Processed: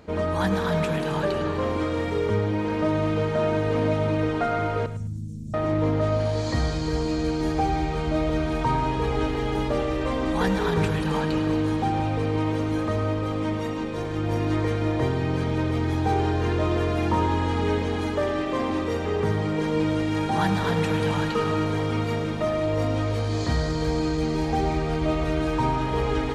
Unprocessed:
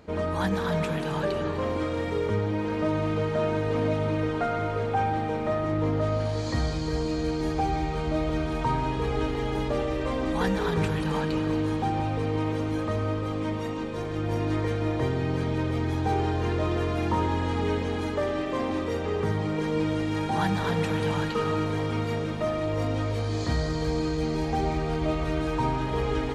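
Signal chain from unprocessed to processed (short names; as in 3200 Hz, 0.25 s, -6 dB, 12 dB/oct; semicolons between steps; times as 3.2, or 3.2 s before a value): 4.86–5.54 Chebyshev band-stop 190–6800 Hz, order 3; thinning echo 0.106 s, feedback 24%, level -12 dB; gain +2.5 dB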